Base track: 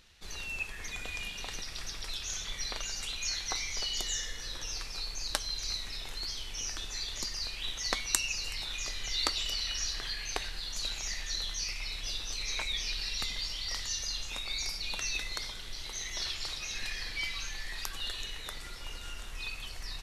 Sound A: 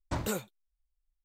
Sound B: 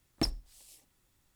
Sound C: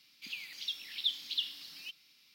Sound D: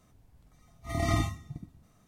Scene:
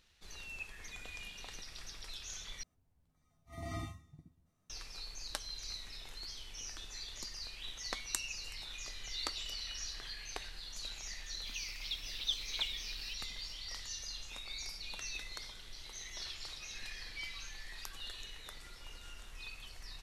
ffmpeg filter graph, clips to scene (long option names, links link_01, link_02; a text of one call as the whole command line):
ffmpeg -i bed.wav -i cue0.wav -i cue1.wav -i cue2.wav -i cue3.wav -filter_complex "[0:a]volume=-8.5dB[link_01];[4:a]asplit=2[link_02][link_03];[link_03]adelay=12,volume=-7dB[link_04];[link_02][link_04]amix=inputs=2:normalize=0[link_05];[link_01]asplit=2[link_06][link_07];[link_06]atrim=end=2.634[link_08];[link_05]atrim=end=2.07,asetpts=PTS-STARTPTS,volume=-15.5dB[link_09];[link_07]atrim=start=4.696[link_10];[3:a]atrim=end=2.34,asetpts=PTS-STARTPTS,volume=-3.5dB,afade=type=in:duration=0.004:curve=hsin,afade=type=out:start_time=2.336:duration=0.004:curve=hsin,adelay=11230[link_11];[link_08][link_09]acrossfade=duration=0.004:curve1=hsin:curve2=hsin[link_12];[link_12][link_10]acrossfade=duration=0.004:curve1=hsin:curve2=hsin[link_13];[link_13][link_11]amix=inputs=2:normalize=0" out.wav